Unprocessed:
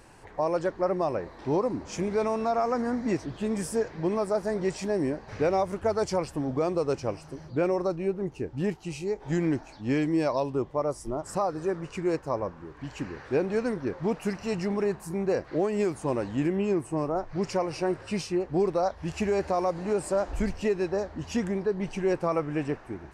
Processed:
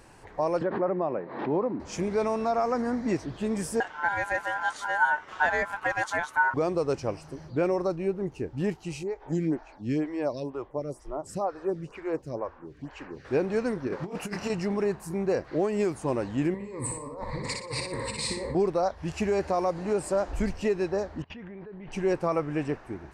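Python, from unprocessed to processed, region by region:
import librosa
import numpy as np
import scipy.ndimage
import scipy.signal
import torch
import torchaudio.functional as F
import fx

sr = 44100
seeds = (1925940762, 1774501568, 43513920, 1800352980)

y = fx.chain(x, sr, fx.highpass(hz=150.0, slope=24),
    fx.air_absorb(metres=460.0),
    fx.pre_swell(db_per_s=73.0), at=(0.61, 1.8))
y = fx.chain(y, sr, fx.peak_eq(hz=290.0, db=13.0, octaves=0.29),
    fx.ring_mod(carrier_hz=1200.0), at=(3.8, 6.54))
y = fx.chain(y, sr, fx.high_shelf(hz=5500.0, db=-4.0),
    fx.stagger_phaser(hz=2.1), at=(9.03, 13.25))
y = fx.chain(y, sr, fx.low_shelf(hz=100.0, db=-10.0),
    fx.doubler(ms=29.0, db=-3.0),
    fx.over_compress(threshold_db=-31.0, ratio=-0.5), at=(13.87, 14.5))
y = fx.chain(y, sr, fx.ripple_eq(per_octave=0.98, db=18),
    fx.over_compress(threshold_db=-37.0, ratio=-1.0),
    fx.echo_feedback(ms=60, feedback_pct=31, wet_db=-4), at=(16.54, 18.55))
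y = fx.chain(y, sr, fx.lowpass(hz=3300.0, slope=24),
    fx.level_steps(step_db=21),
    fx.dynamic_eq(hz=2000.0, q=1.3, threshold_db=-59.0, ratio=4.0, max_db=4), at=(21.22, 21.92))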